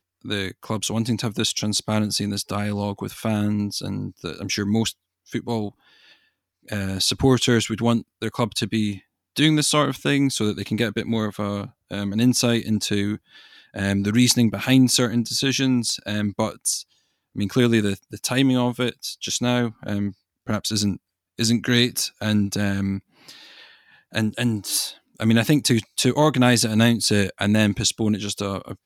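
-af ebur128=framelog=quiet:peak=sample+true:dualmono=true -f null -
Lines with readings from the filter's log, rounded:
Integrated loudness:
  I:         -19.1 LUFS
  Threshold: -29.6 LUFS
Loudness range:
  LRA:         5.5 LU
  Threshold: -39.6 LUFS
  LRA low:   -22.3 LUFS
  LRA high:  -16.8 LUFS
Sample peak:
  Peak:       -3.8 dBFS
True peak:
  Peak:       -3.8 dBFS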